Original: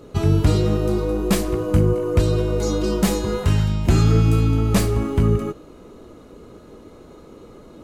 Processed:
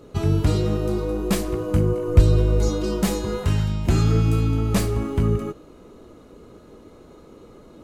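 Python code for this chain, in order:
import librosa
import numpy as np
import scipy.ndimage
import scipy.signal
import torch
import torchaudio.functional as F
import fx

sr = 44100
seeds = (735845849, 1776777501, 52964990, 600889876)

y = fx.low_shelf(x, sr, hz=110.0, db=11.5, at=(2.08, 2.69))
y = y * 10.0 ** (-3.0 / 20.0)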